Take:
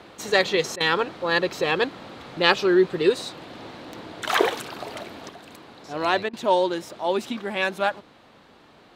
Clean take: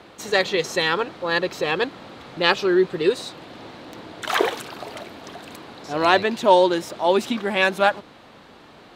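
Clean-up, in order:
repair the gap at 0:00.76/0:06.29, 42 ms
level correction +5.5 dB, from 0:05.29

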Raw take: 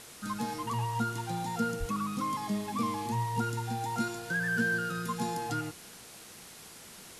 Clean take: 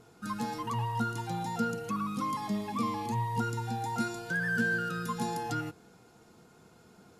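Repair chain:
0:01.79–0:01.91: high-pass filter 140 Hz 24 dB per octave
noise reduction from a noise print 8 dB

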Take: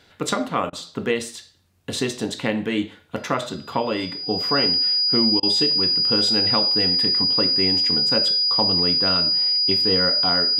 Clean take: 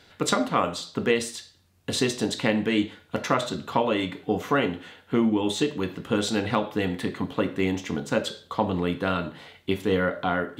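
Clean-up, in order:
notch filter 4,900 Hz, Q 30
repair the gap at 0:00.70/0:05.40, 27 ms

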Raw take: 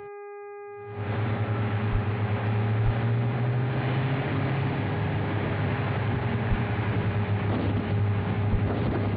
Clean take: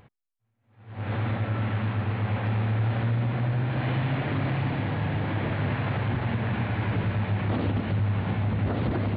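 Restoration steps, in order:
hum removal 408.2 Hz, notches 6
high-pass at the plosives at 0:01.91/0:02.84/0:06.49/0:08.51

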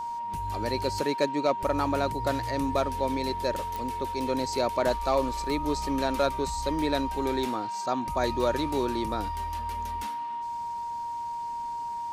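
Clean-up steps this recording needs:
click removal
notch filter 940 Hz, Q 30

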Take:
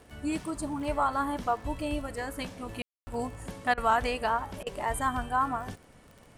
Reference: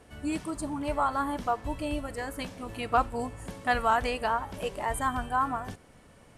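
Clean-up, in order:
click removal
ambience match 0:02.82–0:03.07
repair the gap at 0:03.74/0:04.63, 34 ms

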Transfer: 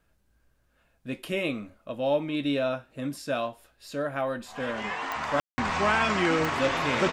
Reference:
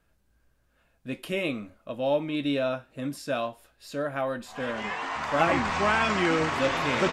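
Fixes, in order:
click removal
ambience match 0:05.40–0:05.58

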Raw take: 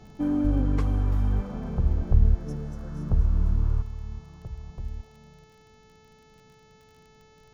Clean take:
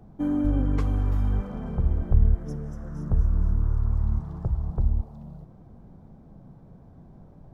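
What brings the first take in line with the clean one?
click removal
hum removal 436.1 Hz, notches 16
level 0 dB, from 0:03.82 +11.5 dB

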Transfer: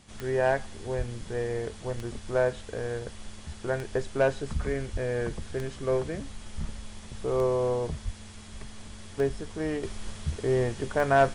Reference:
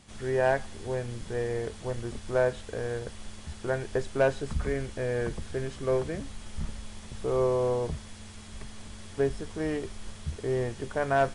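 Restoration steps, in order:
click removal
0:00.97–0:01.09: high-pass filter 140 Hz 24 dB per octave
0:04.92–0:05.04: high-pass filter 140 Hz 24 dB per octave
0:08.04–0:08.16: high-pass filter 140 Hz 24 dB per octave
level 0 dB, from 0:09.83 −3.5 dB

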